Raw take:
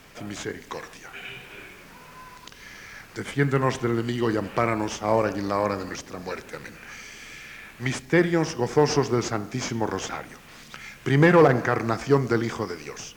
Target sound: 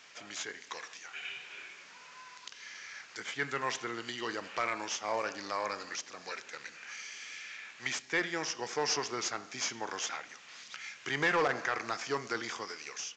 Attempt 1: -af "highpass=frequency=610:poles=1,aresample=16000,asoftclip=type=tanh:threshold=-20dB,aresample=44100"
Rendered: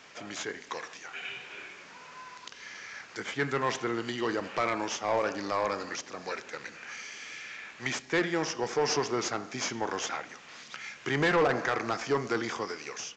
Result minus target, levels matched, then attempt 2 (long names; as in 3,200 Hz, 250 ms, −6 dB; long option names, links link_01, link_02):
500 Hz band +3.0 dB
-af "highpass=frequency=2200:poles=1,aresample=16000,asoftclip=type=tanh:threshold=-20dB,aresample=44100"